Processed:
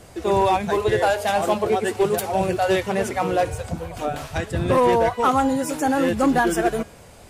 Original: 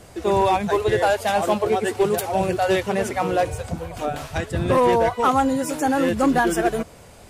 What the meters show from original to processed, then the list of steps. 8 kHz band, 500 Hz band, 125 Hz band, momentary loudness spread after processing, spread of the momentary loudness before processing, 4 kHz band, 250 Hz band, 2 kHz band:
0.0 dB, 0.0 dB, 0.0 dB, 10 LU, 10 LU, 0.0 dB, 0.0 dB, 0.0 dB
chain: de-hum 204.6 Hz, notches 40

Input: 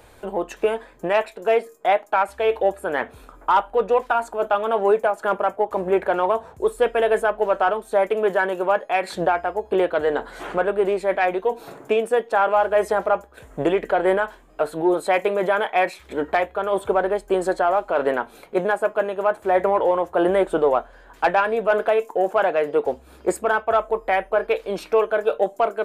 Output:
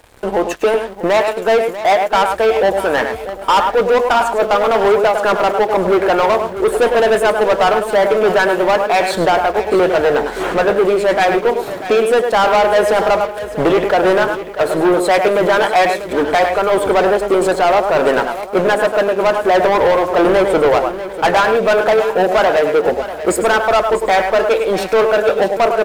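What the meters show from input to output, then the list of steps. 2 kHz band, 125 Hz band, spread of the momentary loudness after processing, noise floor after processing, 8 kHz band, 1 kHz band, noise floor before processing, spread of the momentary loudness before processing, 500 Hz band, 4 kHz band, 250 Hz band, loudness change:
+8.0 dB, +10.0 dB, 5 LU, -27 dBFS, n/a, +7.5 dB, -49 dBFS, 6 LU, +7.5 dB, +13.5 dB, +8.5 dB, +7.5 dB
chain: echo 0.103 s -10 dB; sample leveller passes 3; lo-fi delay 0.642 s, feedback 35%, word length 7-bit, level -12.5 dB

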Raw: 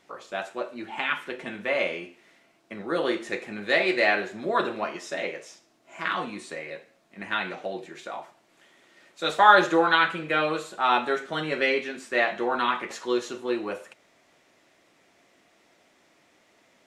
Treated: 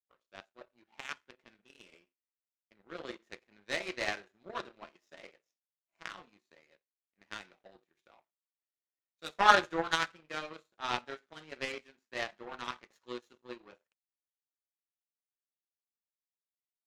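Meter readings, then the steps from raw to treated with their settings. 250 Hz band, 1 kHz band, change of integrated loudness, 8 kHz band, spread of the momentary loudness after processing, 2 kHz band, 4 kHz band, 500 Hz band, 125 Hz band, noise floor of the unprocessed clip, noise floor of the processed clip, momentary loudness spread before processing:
-15.5 dB, -10.0 dB, -9.0 dB, -4.5 dB, 23 LU, -11.0 dB, -8.0 dB, -14.5 dB, -11.5 dB, -63 dBFS, under -85 dBFS, 17 LU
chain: spectral repair 1.65–1.9, 430–2500 Hz; elliptic low-pass 7000 Hz; power-law curve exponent 2

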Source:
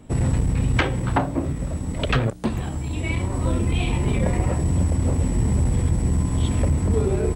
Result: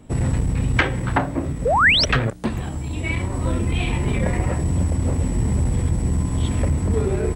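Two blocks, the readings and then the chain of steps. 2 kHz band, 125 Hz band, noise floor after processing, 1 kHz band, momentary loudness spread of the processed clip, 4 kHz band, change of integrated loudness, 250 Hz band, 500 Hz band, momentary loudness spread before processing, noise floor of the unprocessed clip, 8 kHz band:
+9.5 dB, 0.0 dB, -28 dBFS, +5.0 dB, 9 LU, +10.0 dB, +2.0 dB, 0.0 dB, +1.5 dB, 6 LU, -29 dBFS, +1.0 dB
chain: painted sound rise, 1.65–2.05, 430–6000 Hz -18 dBFS; dynamic EQ 1800 Hz, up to +6 dB, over -41 dBFS, Q 1.6

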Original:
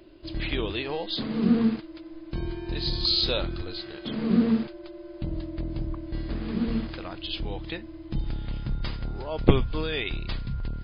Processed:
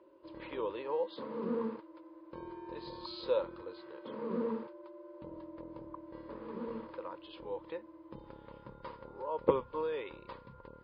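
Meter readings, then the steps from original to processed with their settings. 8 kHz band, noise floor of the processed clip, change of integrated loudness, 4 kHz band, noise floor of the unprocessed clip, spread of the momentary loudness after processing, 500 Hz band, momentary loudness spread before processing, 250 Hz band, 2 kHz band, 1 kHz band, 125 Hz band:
n/a, -58 dBFS, -10.5 dB, -23.0 dB, -44 dBFS, 17 LU, -3.0 dB, 13 LU, -15.5 dB, -15.5 dB, -2.5 dB, -22.5 dB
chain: double band-pass 710 Hz, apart 0.86 oct; gain +3.5 dB

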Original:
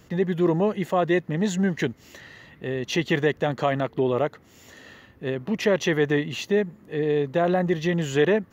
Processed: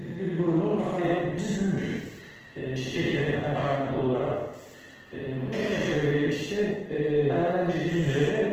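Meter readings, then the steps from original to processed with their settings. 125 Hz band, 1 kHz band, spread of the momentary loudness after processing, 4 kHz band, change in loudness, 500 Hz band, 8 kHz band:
-1.0 dB, -4.0 dB, 13 LU, -4.0 dB, -3.0 dB, -3.5 dB, n/a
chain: stepped spectrum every 0.2 s; plate-style reverb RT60 1 s, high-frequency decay 0.85×, DRR -1.5 dB; gain -3.5 dB; Opus 16 kbps 48000 Hz

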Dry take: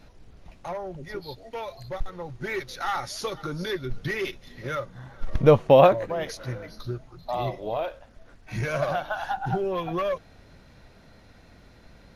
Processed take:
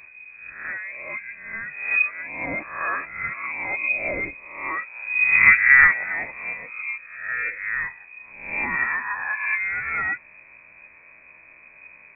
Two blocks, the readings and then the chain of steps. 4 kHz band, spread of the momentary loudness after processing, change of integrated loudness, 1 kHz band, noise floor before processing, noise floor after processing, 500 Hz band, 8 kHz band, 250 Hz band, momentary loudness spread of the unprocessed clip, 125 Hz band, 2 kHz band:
under -35 dB, 19 LU, +5.5 dB, -3.0 dB, -53 dBFS, -50 dBFS, -17.0 dB, n/a, -10.0 dB, 18 LU, under -15 dB, +18.0 dB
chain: spectral swells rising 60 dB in 0.67 s; inverted band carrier 2500 Hz

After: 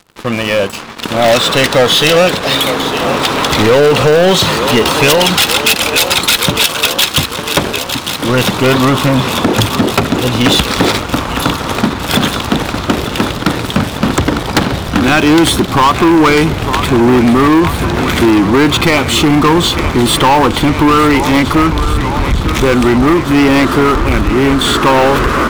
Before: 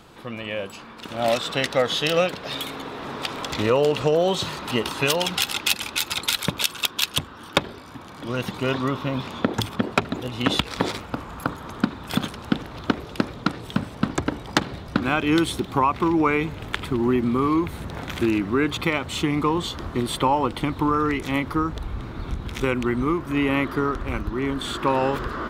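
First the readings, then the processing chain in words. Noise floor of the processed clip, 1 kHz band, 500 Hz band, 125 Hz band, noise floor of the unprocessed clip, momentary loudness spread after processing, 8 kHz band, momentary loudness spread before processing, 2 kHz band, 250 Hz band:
-21 dBFS, +13.5 dB, +13.0 dB, +14.0 dB, -41 dBFS, 7 LU, +15.0 dB, 10 LU, +14.0 dB, +13.5 dB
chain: thinning echo 0.904 s, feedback 75%, high-pass 290 Hz, level -14.5 dB; sample leveller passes 5

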